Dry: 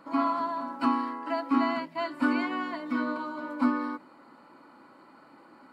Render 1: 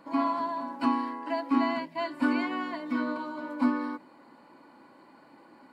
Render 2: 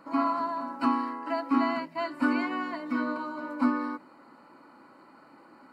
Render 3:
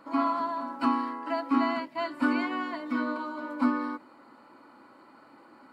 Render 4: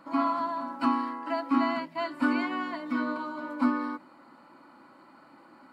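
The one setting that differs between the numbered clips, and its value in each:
notch, frequency: 1300, 3400, 170, 440 Hz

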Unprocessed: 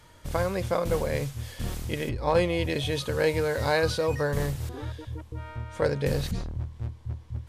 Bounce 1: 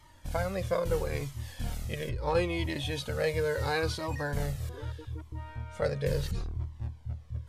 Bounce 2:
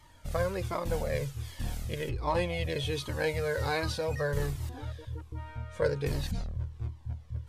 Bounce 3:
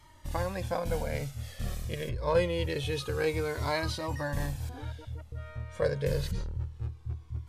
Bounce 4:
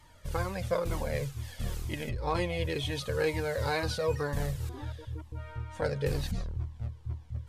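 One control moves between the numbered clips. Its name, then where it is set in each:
cascading flanger, rate: 0.75, 1.3, 0.26, 2.1 Hz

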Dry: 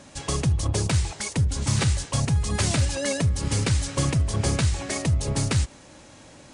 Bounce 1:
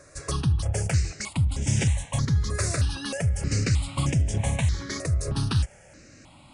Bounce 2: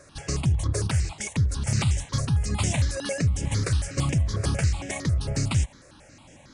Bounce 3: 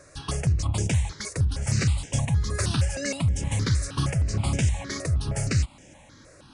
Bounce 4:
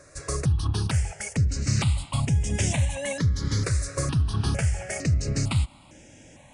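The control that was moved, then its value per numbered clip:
step phaser, rate: 3.2, 11, 6.4, 2.2 Hz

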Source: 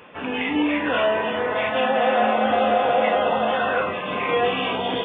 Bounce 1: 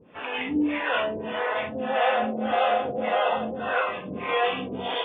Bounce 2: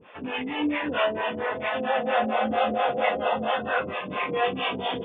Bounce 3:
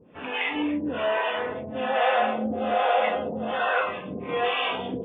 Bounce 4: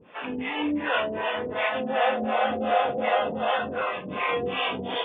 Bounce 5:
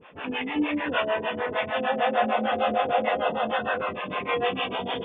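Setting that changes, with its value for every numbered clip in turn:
harmonic tremolo, rate: 1.7, 4.4, 1.2, 2.7, 6.6 Hz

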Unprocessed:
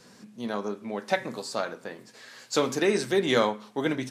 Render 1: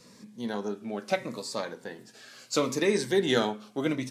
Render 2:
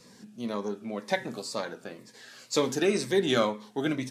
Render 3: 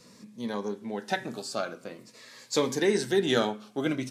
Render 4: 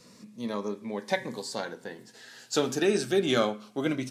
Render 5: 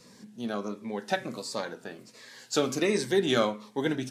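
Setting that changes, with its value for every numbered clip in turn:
cascading phaser, rate: 0.75, 2, 0.47, 0.22, 1.4 Hz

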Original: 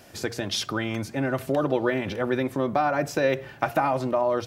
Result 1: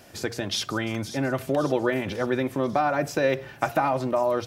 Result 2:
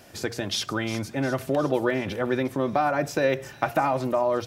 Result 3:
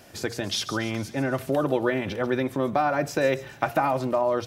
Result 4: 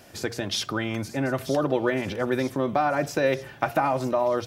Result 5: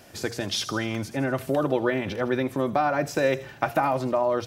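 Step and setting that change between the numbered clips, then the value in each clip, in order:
thin delay, time: 544, 356, 140, 935, 79 ms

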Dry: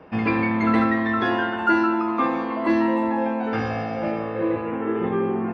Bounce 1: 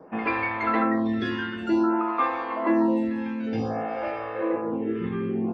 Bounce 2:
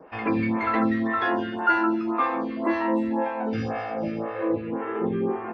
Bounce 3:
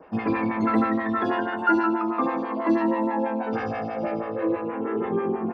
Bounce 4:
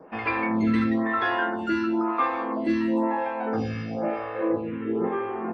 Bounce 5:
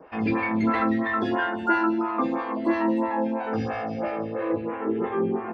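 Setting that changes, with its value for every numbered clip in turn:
photocell phaser, rate: 0.54, 1.9, 6.2, 1, 3 Hz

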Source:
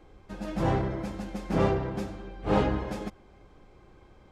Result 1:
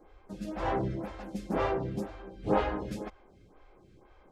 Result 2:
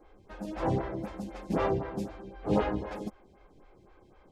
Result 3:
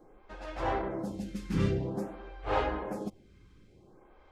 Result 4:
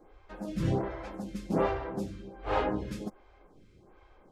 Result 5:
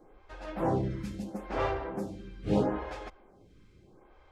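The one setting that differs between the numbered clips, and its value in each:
photocell phaser, rate: 2, 3.9, 0.51, 1.3, 0.76 Hz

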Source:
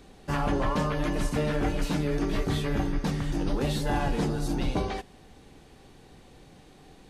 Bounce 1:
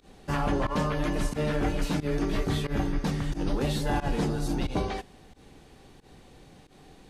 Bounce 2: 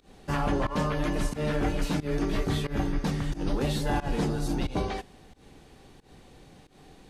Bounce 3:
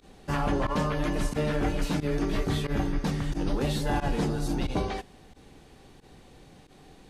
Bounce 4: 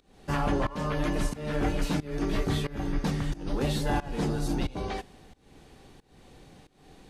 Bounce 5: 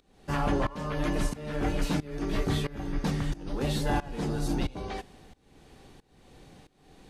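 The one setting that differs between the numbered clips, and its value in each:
pump, release: 98, 149, 65, 354, 533 ms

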